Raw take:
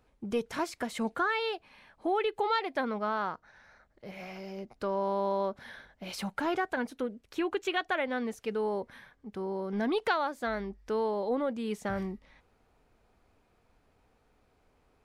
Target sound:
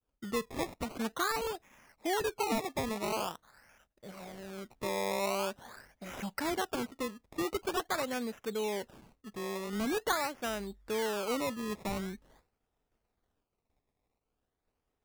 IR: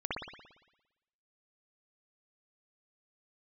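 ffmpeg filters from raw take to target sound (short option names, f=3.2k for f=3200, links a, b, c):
-af "agate=range=-33dB:threshold=-58dB:ratio=3:detection=peak,acrusher=samples=20:mix=1:aa=0.000001:lfo=1:lforange=20:lforate=0.45,volume=-3dB"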